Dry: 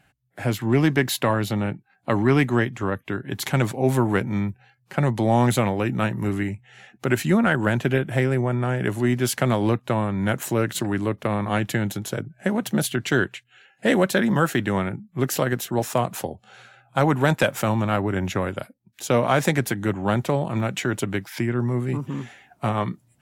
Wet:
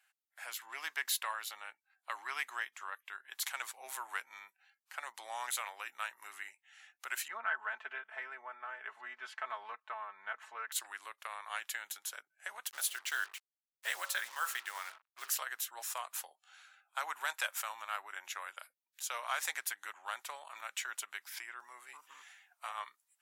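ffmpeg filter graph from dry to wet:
ffmpeg -i in.wav -filter_complex "[0:a]asettb=1/sr,asplit=3[link_01][link_02][link_03];[link_01]atrim=end=7.284[link_04];[link_02]atrim=start=7.28:end=10.72,asetpts=PTS-STARTPTS,afade=type=in:duration=0.004:curve=qsin,afade=type=out:start_time=3.436:duration=0.004:curve=qsin,lowpass=1700,aecho=1:1:4.6:0.79,atrim=end_sample=151704[link_05];[link_03]atrim=start=10.716[link_06];[link_04][link_05]acrossfade=duration=0.004:curve1=hsin:curve2=qsin[link_07];[link_07][link_06]acrossfade=duration=0.004:curve1=qsin:curve2=hsin,asettb=1/sr,asplit=3[link_08][link_09][link_10];[link_08]atrim=end=12.704[link_11];[link_09]atrim=start=12.7:end=15.35,asetpts=PTS-STARTPTS,afade=type=in:duration=0.004:curve=qsin,afade=type=out:start_time=2.646:duration=0.004:curve=qsin,equalizer=frequency=160:width_type=o:width=0.68:gain=-11,bandreject=frequency=50.22:width_type=h:width=4,bandreject=frequency=100.44:width_type=h:width=4,bandreject=frequency=150.66:width_type=h:width=4,bandreject=frequency=200.88:width_type=h:width=4,bandreject=frequency=251.1:width_type=h:width=4,bandreject=frequency=301.32:width_type=h:width=4,bandreject=frequency=351.54:width_type=h:width=4,bandreject=frequency=401.76:width_type=h:width=4,bandreject=frequency=451.98:width_type=h:width=4,bandreject=frequency=502.2:width_type=h:width=4,bandreject=frequency=552.42:width_type=h:width=4,bandreject=frequency=602.64:width_type=h:width=4,bandreject=frequency=652.86:width_type=h:width=4,bandreject=frequency=703.08:width_type=h:width=4,bandreject=frequency=753.3:width_type=h:width=4,bandreject=frequency=803.52:width_type=h:width=4,bandreject=frequency=853.74:width_type=h:width=4,bandreject=frequency=903.96:width_type=h:width=4,bandreject=frequency=954.18:width_type=h:width=4,bandreject=frequency=1004.4:width_type=h:width=4,bandreject=frequency=1054.62:width_type=h:width=4,bandreject=frequency=1104.84:width_type=h:width=4,bandreject=frequency=1155.06:width_type=h:width=4,bandreject=frequency=1205.28:width_type=h:width=4,bandreject=frequency=1255.5:width_type=h:width=4,bandreject=frequency=1305.72:width_type=h:width=4,bandreject=frequency=1355.94:width_type=h:width=4,acrusher=bits=5:mix=0:aa=0.5[link_12];[link_10]atrim=start=15.346[link_13];[link_11][link_12]acrossfade=duration=0.004:curve1=hsin:curve2=qsin[link_14];[link_14][link_13]acrossfade=duration=0.004:curve1=qsin:curve2=hsin,highpass=frequency=1100:width=0.5412,highpass=frequency=1100:width=1.3066,equalizer=frequency=2000:width=0.39:gain=-7,volume=-4dB" out.wav

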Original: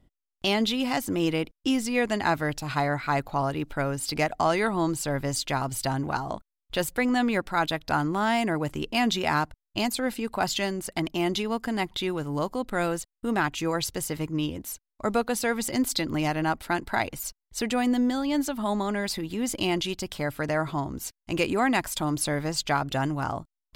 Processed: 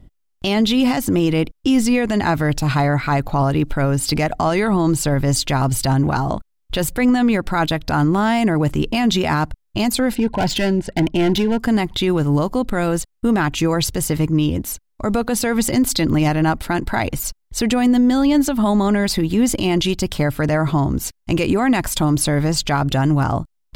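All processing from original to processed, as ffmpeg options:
ffmpeg -i in.wav -filter_complex "[0:a]asettb=1/sr,asplit=3[link_01][link_02][link_03];[link_01]atrim=end=10.154[link_04];[link_02]atrim=start=10.15:end=11.59,asetpts=PTS-STARTPTS,afade=type=in:duration=0.004:curve=qsin,afade=type=out:start_time=1.436:duration=0.004:curve=qsin,adynamicsmooth=sensitivity=3.5:basefreq=3600,asoftclip=type=hard:threshold=-25.5dB,asuperstop=centerf=1200:order=20:qfactor=4.2[link_05];[link_03]atrim=start=11.586[link_06];[link_04][link_05]acrossfade=duration=0.004:curve1=hsin:curve2=qsin[link_07];[link_07][link_06]acrossfade=duration=0.004:curve1=qsin:curve2=hsin,lowshelf=frequency=270:gain=9.5,alimiter=level_in=16.5dB:limit=-1dB:release=50:level=0:latency=1,volume=-7.5dB" out.wav

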